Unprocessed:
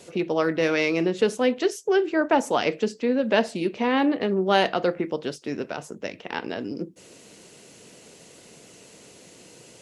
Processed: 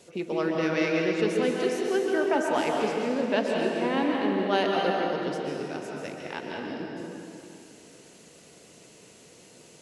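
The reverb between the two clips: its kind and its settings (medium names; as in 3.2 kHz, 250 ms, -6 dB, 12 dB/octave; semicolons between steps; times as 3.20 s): plate-style reverb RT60 2.8 s, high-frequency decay 0.75×, pre-delay 115 ms, DRR -1 dB; trim -6.5 dB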